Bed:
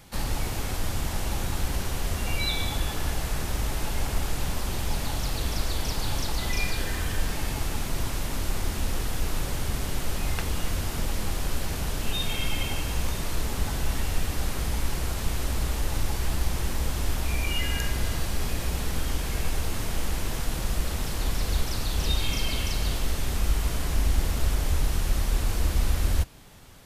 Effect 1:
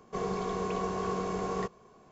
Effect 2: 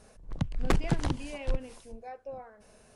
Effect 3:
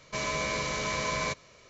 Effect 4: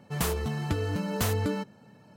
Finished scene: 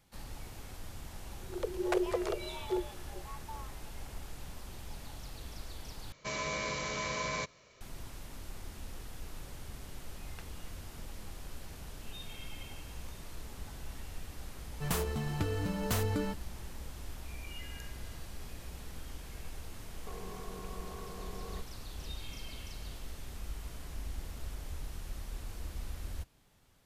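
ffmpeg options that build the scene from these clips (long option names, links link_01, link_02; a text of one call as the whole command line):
ffmpeg -i bed.wav -i cue0.wav -i cue1.wav -i cue2.wav -i cue3.wav -filter_complex "[0:a]volume=-17dB[link_01];[2:a]afreqshift=340[link_02];[1:a]acompressor=threshold=-38dB:ratio=6:attack=3.2:release=140:knee=1:detection=peak[link_03];[link_01]asplit=2[link_04][link_05];[link_04]atrim=end=6.124[link_06];[3:a]atrim=end=1.69,asetpts=PTS-STARTPTS,volume=-5dB[link_07];[link_05]atrim=start=7.806[link_08];[link_02]atrim=end=2.95,asetpts=PTS-STARTPTS,volume=-6.5dB,afade=type=in:duration=0.004:curve=hsin,afade=type=out:start_time=2.946:duration=0.004:curve=hsin,adelay=1220[link_09];[4:a]atrim=end=2.16,asetpts=PTS-STARTPTS,volume=-4.5dB,afade=type=in:duration=0.004:curve=hsin,afade=type=out:start_time=2.156:duration=0.004:curve=hsin,adelay=14700[link_10];[link_03]atrim=end=2.11,asetpts=PTS-STARTPTS,volume=-5.5dB,afade=type=in:duration=0.004:curve=hsin,afade=type=out:start_time=2.106:duration=0.004:curve=hsin,adelay=19940[link_11];[link_06][link_07]acrossfade=duration=0.004:curve1=hsin:curve2=hsin[link_12];[link_12][link_08]acrossfade=duration=0.004:curve1=hsin:curve2=hsin[link_13];[link_13][link_09][link_10][link_11]amix=inputs=4:normalize=0" out.wav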